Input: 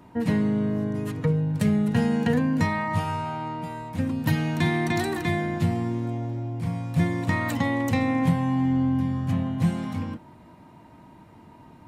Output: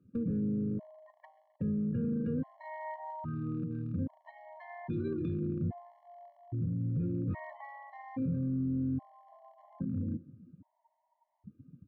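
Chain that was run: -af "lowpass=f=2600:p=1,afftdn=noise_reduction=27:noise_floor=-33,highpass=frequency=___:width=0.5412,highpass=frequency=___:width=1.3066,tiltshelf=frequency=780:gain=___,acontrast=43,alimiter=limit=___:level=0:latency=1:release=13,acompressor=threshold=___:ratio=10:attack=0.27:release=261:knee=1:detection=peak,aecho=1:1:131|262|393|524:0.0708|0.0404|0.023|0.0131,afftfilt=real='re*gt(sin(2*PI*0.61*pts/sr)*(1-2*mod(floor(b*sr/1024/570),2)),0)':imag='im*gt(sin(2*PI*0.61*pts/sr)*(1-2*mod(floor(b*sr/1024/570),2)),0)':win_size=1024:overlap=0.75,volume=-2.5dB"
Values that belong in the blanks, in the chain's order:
57, 57, 7, -9dB, -26dB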